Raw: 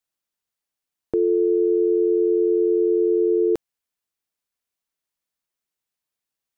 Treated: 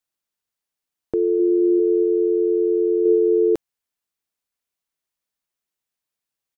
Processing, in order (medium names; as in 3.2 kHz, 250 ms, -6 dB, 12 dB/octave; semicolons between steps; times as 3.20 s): 1.15–1.55 s: echo throw 240 ms, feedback 30%, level -4.5 dB; 3.02–3.55 s: flutter echo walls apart 5.8 m, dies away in 0.64 s